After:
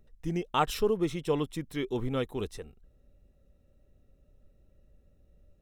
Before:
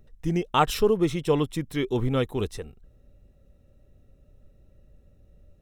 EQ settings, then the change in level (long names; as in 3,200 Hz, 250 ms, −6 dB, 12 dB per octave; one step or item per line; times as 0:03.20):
parametric band 110 Hz −4 dB 0.79 octaves
−5.5 dB